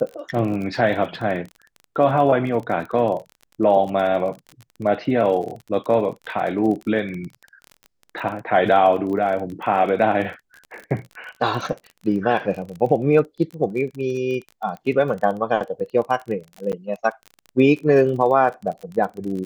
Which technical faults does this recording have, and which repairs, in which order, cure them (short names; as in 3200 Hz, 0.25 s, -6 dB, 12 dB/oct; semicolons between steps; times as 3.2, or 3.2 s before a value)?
crackle 29/s -29 dBFS
16.72–16.73 gap 8.8 ms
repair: de-click; interpolate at 16.72, 8.8 ms